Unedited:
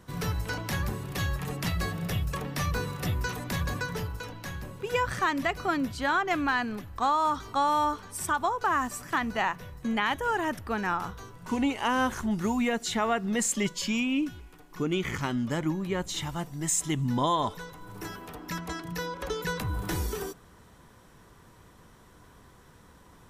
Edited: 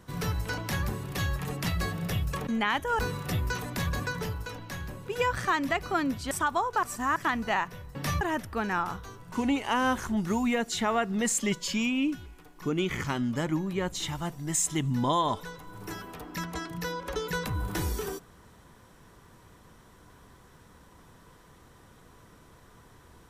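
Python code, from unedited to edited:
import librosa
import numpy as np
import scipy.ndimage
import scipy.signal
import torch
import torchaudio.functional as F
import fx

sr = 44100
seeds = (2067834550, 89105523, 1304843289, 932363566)

y = fx.edit(x, sr, fx.swap(start_s=2.47, length_s=0.26, other_s=9.83, other_length_s=0.52),
    fx.cut(start_s=6.05, length_s=2.14),
    fx.reverse_span(start_s=8.71, length_s=0.33), tone=tone)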